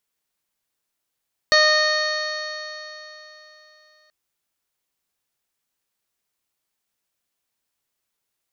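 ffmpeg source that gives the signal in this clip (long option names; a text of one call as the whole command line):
ffmpeg -f lavfi -i "aevalsrc='0.133*pow(10,-3*t/3.45)*sin(2*PI*612.34*t)+0.0841*pow(10,-3*t/3.45)*sin(2*PI*1226.69*t)+0.168*pow(10,-3*t/3.45)*sin(2*PI*1845.07*t)+0.0237*pow(10,-3*t/3.45)*sin(2*PI*2469.45*t)+0.0237*pow(10,-3*t/3.45)*sin(2*PI*3101.79*t)+0.0562*pow(10,-3*t/3.45)*sin(2*PI*3744*t)+0.15*pow(10,-3*t/3.45)*sin(2*PI*4397.94*t)+0.0211*pow(10,-3*t/3.45)*sin(2*PI*5065.41*t)+0.0335*pow(10,-3*t/3.45)*sin(2*PI*5748.15*t)+0.015*pow(10,-3*t/3.45)*sin(2*PI*6447.82*t)':duration=2.58:sample_rate=44100" out.wav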